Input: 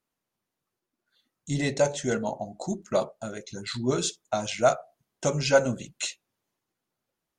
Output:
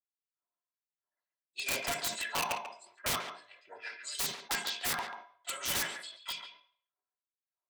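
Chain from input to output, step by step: low-pass opened by the level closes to 400 Hz, open at -21.5 dBFS; low shelf 330 Hz -6.5 dB; comb 2.9 ms, depth 69%; dynamic EQ 7200 Hz, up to -3 dB, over -49 dBFS, Q 1.4; in parallel at -5.5 dB: soft clip -23 dBFS, distortion -7 dB; on the sum: formant shift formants +4 st; LFO high-pass sine 1.6 Hz 970–4900 Hz; wrapped overs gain 21.5 dB; on a send at -8 dB: reverb RT60 0.65 s, pre-delay 3 ms; on the sum: speed mistake 25 fps video run at 24 fps; speakerphone echo 0.14 s, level -7 dB; sustainer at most 120 dB/s; gain -5 dB

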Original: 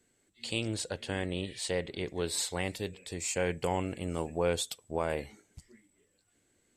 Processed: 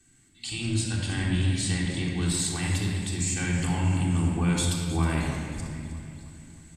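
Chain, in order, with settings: EQ curve 200 Hz 0 dB, 320 Hz -5 dB, 460 Hz -23 dB, 900 Hz -7 dB, 2100 Hz -4 dB, 5000 Hz -3 dB, 8600 Hz +2 dB, 14000 Hz -10 dB; in parallel at -3 dB: level quantiser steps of 19 dB; on the sum: limiter -29.5 dBFS, peak gain reduction 12 dB; vocal rider 2 s; feedback echo 0.314 s, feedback 53%, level -13.5 dB; shoebox room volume 3300 m³, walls mixed, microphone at 3.6 m; gain +6.5 dB

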